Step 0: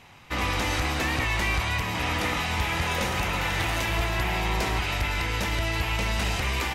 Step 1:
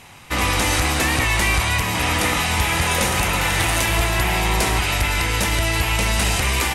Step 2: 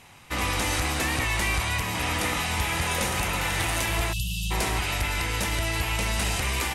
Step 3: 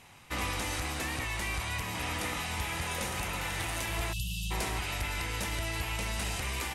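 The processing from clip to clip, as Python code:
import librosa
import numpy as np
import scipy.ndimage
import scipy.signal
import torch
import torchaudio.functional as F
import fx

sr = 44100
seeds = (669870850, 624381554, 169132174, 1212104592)

y1 = fx.peak_eq(x, sr, hz=9600.0, db=12.0, octaves=0.87)
y1 = y1 * librosa.db_to_amplitude(6.5)
y2 = fx.spec_erase(y1, sr, start_s=4.13, length_s=0.38, low_hz=200.0, high_hz=2600.0)
y2 = y2 * librosa.db_to_amplitude(-7.0)
y3 = fx.rider(y2, sr, range_db=4, speed_s=0.5)
y3 = y3 * librosa.db_to_amplitude(-7.5)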